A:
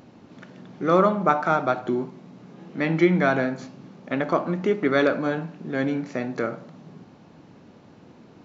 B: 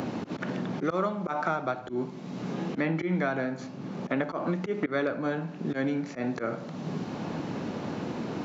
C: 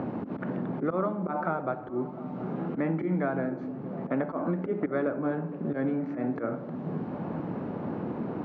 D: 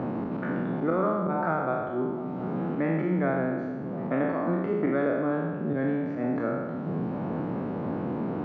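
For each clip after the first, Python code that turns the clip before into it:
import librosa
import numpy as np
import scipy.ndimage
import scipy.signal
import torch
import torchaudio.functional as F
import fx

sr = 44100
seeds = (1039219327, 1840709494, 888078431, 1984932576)

y1 = fx.auto_swell(x, sr, attack_ms=129.0)
y1 = fx.band_squash(y1, sr, depth_pct=100)
y1 = y1 * librosa.db_to_amplitude(-4.0)
y2 = scipy.signal.sosfilt(scipy.signal.butter(2, 1300.0, 'lowpass', fs=sr, output='sos'), y1)
y2 = fx.echo_stepped(y2, sr, ms=234, hz=220.0, octaves=0.7, feedback_pct=70, wet_db=-7.5)
y3 = fx.spec_trails(y2, sr, decay_s=1.42)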